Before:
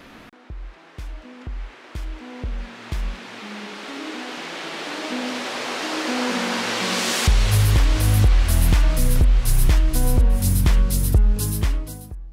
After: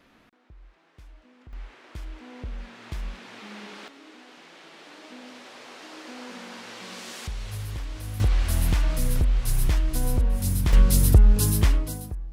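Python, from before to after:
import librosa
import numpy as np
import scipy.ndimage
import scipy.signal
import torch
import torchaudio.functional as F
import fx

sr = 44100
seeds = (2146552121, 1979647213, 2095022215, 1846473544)

y = fx.gain(x, sr, db=fx.steps((0.0, -15.0), (1.53, -7.0), (3.88, -17.0), (8.2, -6.0), (10.73, 1.5)))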